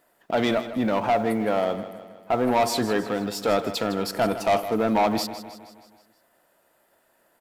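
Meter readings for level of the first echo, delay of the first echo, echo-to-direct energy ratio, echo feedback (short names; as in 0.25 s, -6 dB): -13.0 dB, 0.158 s, -11.5 dB, 54%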